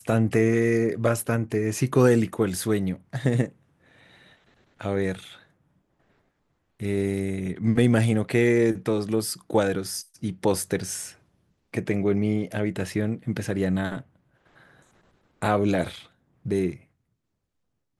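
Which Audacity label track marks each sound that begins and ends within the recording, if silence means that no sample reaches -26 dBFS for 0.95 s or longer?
4.810000	5.130000	sound
6.820000	13.970000	sound
15.420000	16.700000	sound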